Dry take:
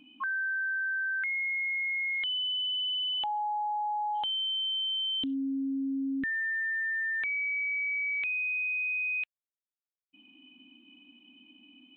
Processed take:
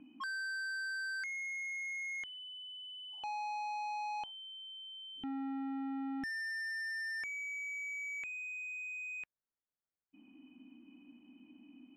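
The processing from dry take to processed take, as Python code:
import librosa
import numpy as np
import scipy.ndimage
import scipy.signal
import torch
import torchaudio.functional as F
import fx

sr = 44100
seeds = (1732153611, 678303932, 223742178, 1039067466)

y = scipy.signal.sosfilt(scipy.signal.butter(4, 1900.0, 'lowpass', fs=sr, output='sos'), x)
y = fx.low_shelf(y, sr, hz=380.0, db=4.0)
y = 10.0 ** (-38.0 / 20.0) * np.tanh(y / 10.0 ** (-38.0 / 20.0))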